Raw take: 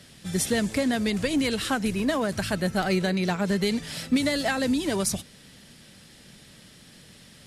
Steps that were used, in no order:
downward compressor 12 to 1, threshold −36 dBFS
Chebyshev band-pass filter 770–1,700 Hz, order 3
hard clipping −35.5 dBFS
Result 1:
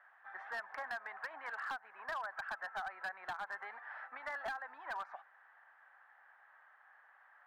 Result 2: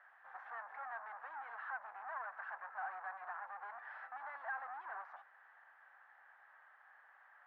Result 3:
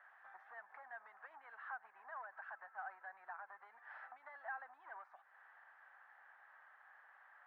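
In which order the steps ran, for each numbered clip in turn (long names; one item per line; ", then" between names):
Chebyshev band-pass filter, then downward compressor, then hard clipping
hard clipping, then Chebyshev band-pass filter, then downward compressor
downward compressor, then hard clipping, then Chebyshev band-pass filter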